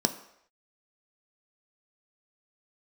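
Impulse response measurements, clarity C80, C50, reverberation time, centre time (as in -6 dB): 15.5 dB, 13.5 dB, not exponential, 9 ms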